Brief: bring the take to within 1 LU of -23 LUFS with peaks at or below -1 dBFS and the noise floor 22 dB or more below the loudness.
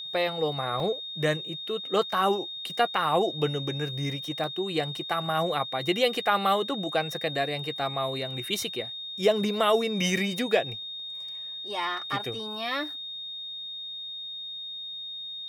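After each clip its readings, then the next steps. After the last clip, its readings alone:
dropouts 2; longest dropout 1.4 ms; steady tone 3700 Hz; tone level -35 dBFS; loudness -28.5 LUFS; peak -9.0 dBFS; loudness target -23.0 LUFS
-> interpolate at 0.8/4.44, 1.4 ms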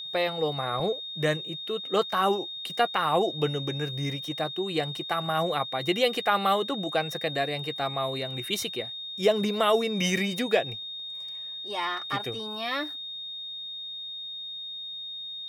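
dropouts 0; steady tone 3700 Hz; tone level -35 dBFS
-> notch 3700 Hz, Q 30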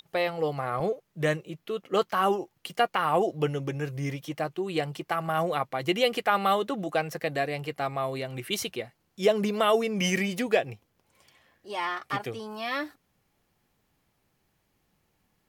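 steady tone none; loudness -28.5 LUFS; peak -8.5 dBFS; loudness target -23.0 LUFS
-> gain +5.5 dB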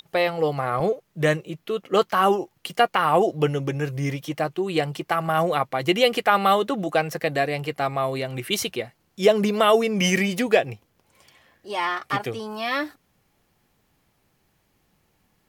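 loudness -23.0 LUFS; peak -3.0 dBFS; noise floor -68 dBFS

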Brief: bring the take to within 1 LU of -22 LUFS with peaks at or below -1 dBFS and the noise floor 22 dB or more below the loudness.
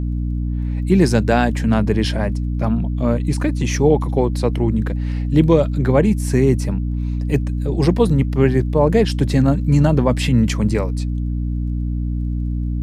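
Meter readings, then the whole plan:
ticks 20/s; hum 60 Hz; harmonics up to 300 Hz; hum level -19 dBFS; loudness -18.5 LUFS; peak -1.5 dBFS; loudness target -22.0 LUFS
-> de-click; de-hum 60 Hz, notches 5; gain -3.5 dB

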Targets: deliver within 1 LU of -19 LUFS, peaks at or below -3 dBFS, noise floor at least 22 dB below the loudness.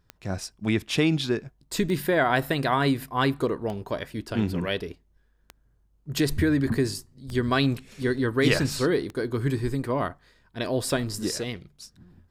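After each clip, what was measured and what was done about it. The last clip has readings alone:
clicks 7; loudness -26.5 LUFS; peak -7.5 dBFS; loudness target -19.0 LUFS
-> de-click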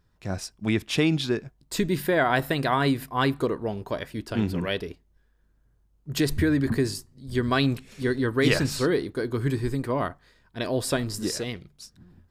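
clicks 0; loudness -26.5 LUFS; peak -7.5 dBFS; loudness target -19.0 LUFS
-> gain +7.5 dB; limiter -3 dBFS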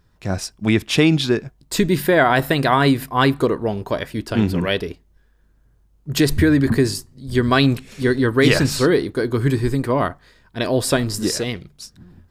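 loudness -19.0 LUFS; peak -3.0 dBFS; noise floor -58 dBFS

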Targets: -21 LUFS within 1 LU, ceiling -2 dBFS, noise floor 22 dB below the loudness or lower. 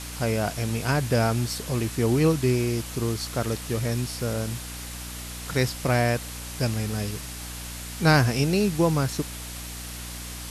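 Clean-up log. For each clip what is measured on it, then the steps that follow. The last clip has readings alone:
hum 60 Hz; harmonics up to 300 Hz; hum level -35 dBFS; noise floor -37 dBFS; noise floor target -48 dBFS; loudness -26.0 LUFS; peak -7.5 dBFS; loudness target -21.0 LUFS
-> notches 60/120/180/240/300 Hz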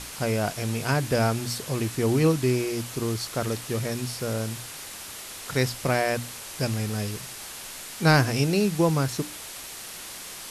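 hum none; noise floor -40 dBFS; noise floor target -49 dBFS
-> noise print and reduce 9 dB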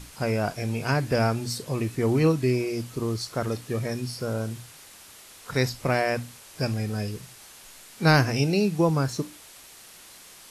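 noise floor -49 dBFS; loudness -26.0 LUFS; peak -8.0 dBFS; loudness target -21.0 LUFS
-> gain +5 dB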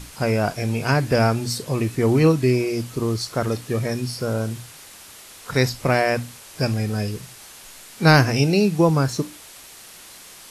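loudness -21.0 LUFS; peak -3.0 dBFS; noise floor -44 dBFS

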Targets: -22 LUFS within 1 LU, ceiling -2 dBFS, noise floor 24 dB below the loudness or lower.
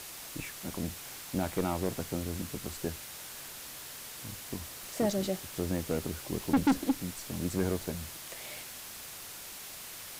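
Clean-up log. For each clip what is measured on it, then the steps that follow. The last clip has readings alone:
clipped 0.5%; flat tops at -20.5 dBFS; noise floor -45 dBFS; noise floor target -60 dBFS; loudness -35.5 LUFS; peak -20.5 dBFS; loudness target -22.0 LUFS
-> clip repair -20.5 dBFS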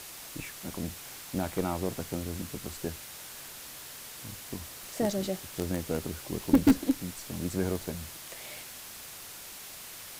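clipped 0.0%; noise floor -45 dBFS; noise floor target -58 dBFS
-> noise print and reduce 13 dB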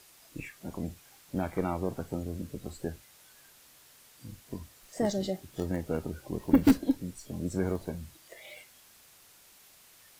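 noise floor -58 dBFS; loudness -32.5 LUFS; peak -11.0 dBFS; loudness target -22.0 LUFS
-> gain +10.5 dB; limiter -2 dBFS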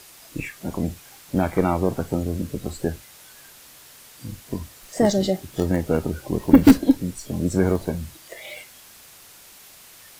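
loudness -22.5 LUFS; peak -2.0 dBFS; noise floor -48 dBFS

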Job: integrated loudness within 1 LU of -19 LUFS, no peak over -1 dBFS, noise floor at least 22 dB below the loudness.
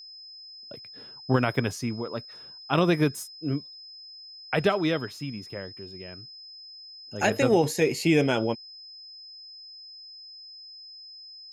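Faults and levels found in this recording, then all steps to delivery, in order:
steady tone 5100 Hz; tone level -43 dBFS; loudness -26.5 LUFS; peak -10.0 dBFS; loudness target -19.0 LUFS
-> notch 5100 Hz, Q 30; gain +7.5 dB

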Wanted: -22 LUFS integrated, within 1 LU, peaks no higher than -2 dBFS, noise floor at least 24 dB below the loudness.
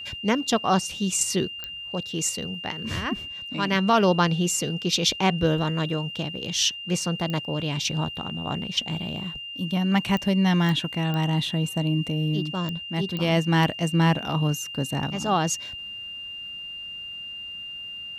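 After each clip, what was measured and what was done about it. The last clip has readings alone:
clicks 7; steady tone 2800 Hz; tone level -34 dBFS; loudness -25.5 LUFS; peak -8.5 dBFS; loudness target -22.0 LUFS
-> de-click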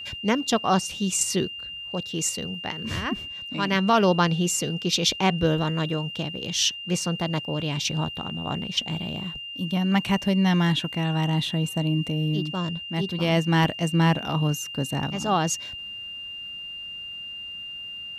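clicks 0; steady tone 2800 Hz; tone level -34 dBFS
-> notch 2800 Hz, Q 30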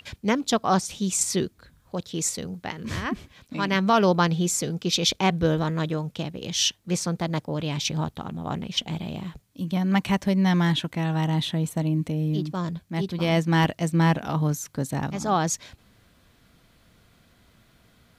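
steady tone none; loudness -25.5 LUFS; peak -9.0 dBFS; loudness target -22.0 LUFS
-> gain +3.5 dB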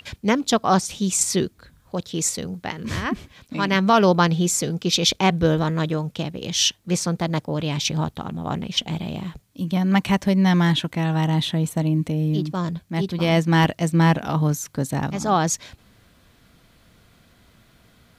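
loudness -22.0 LUFS; peak -5.5 dBFS; noise floor -57 dBFS

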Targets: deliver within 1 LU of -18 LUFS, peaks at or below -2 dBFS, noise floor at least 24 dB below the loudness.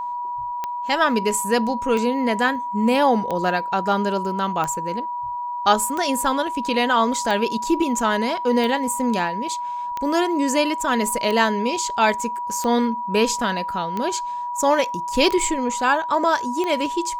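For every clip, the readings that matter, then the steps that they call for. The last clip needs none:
clicks 13; steady tone 970 Hz; tone level -25 dBFS; loudness -21.5 LUFS; peak -3.5 dBFS; loudness target -18.0 LUFS
-> de-click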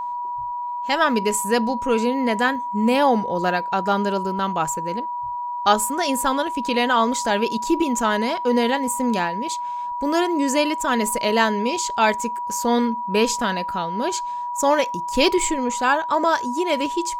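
clicks 0; steady tone 970 Hz; tone level -25 dBFS
-> notch 970 Hz, Q 30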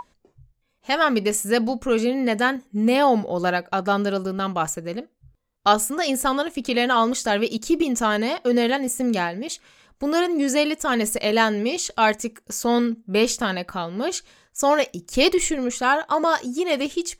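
steady tone none; loudness -22.0 LUFS; peak -3.5 dBFS; loudness target -18.0 LUFS
-> gain +4 dB; limiter -2 dBFS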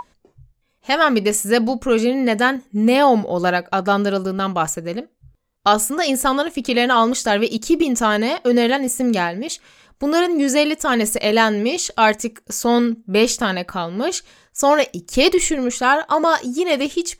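loudness -18.0 LUFS; peak -2.0 dBFS; noise floor -64 dBFS

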